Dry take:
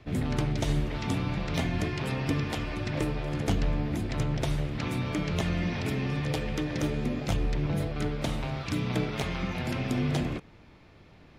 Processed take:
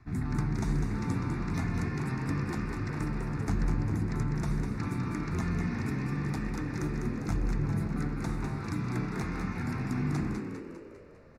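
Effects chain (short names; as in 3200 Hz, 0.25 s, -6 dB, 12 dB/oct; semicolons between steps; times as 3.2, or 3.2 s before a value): high shelf 11000 Hz -10.5 dB; fixed phaser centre 1300 Hz, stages 4; frequency-shifting echo 0.2 s, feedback 52%, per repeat +63 Hz, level -6 dB; gain -1.5 dB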